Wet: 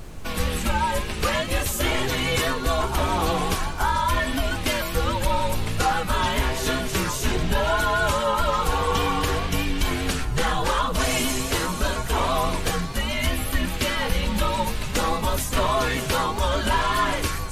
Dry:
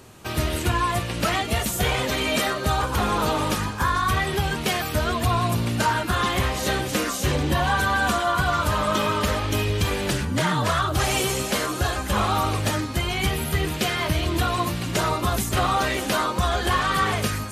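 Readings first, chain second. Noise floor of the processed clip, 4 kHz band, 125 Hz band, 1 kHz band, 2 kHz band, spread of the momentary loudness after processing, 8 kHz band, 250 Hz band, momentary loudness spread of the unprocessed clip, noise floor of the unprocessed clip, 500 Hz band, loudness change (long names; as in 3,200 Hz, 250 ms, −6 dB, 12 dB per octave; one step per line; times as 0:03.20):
−29 dBFS, −0.5 dB, −2.5 dB, −0.5 dB, −1.0 dB, 4 LU, 0.0 dB, −1.5 dB, 3 LU, −30 dBFS, +0.5 dB, −0.5 dB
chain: frequency shifter −130 Hz
background noise brown −35 dBFS
pitch vibrato 4.9 Hz 39 cents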